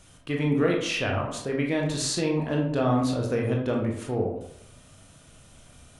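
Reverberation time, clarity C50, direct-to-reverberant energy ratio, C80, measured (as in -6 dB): 0.70 s, 4.5 dB, -0.5 dB, 8.0 dB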